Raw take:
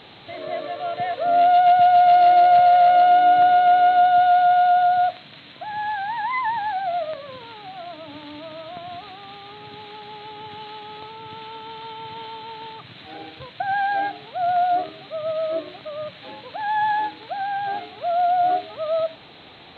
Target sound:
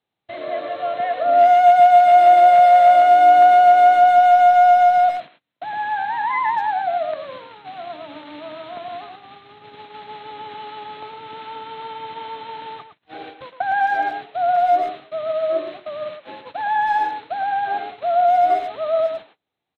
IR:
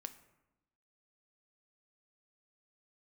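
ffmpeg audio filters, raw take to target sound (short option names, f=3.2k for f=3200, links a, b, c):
-filter_complex "[0:a]acrossover=split=2800[a][b];[b]acompressor=threshold=-54dB:ratio=4:attack=1:release=60[c];[a][c]amix=inputs=2:normalize=0,agate=range=-40dB:threshold=-39dB:ratio=16:detection=peak,acrossover=split=240|1800[d][e][f];[d]acompressor=threshold=-59dB:ratio=6[g];[g][e][f]amix=inputs=3:normalize=0,asplit=2[h][i];[i]adelay=110,highpass=300,lowpass=3.4k,asoftclip=type=hard:threshold=-18dB,volume=-8dB[j];[h][j]amix=inputs=2:normalize=0,volume=3dB"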